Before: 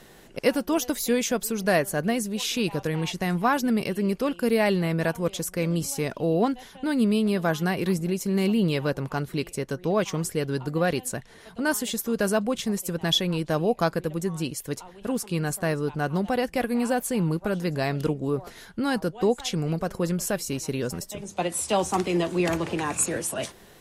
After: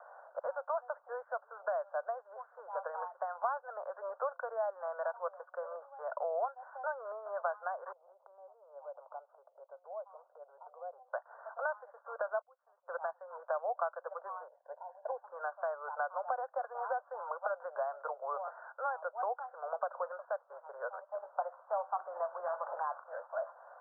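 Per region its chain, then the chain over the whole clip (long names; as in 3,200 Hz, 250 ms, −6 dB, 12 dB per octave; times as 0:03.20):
0:07.92–0:11.13: transistor ladder low-pass 1,000 Hz, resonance 25% + noise gate −43 dBFS, range −7 dB + downward compressor 8 to 1, threshold −40 dBFS
0:12.41–0:12.88: low-pass filter 4,600 Hz + gate with flip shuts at −29 dBFS, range −27 dB
0:14.48–0:15.24: low-shelf EQ 300 Hz −7 dB + phaser with its sweep stopped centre 340 Hz, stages 6
whole clip: Butterworth high-pass 560 Hz 72 dB per octave; downward compressor 6 to 1, threshold −37 dBFS; Butterworth low-pass 1,500 Hz 96 dB per octave; level +5 dB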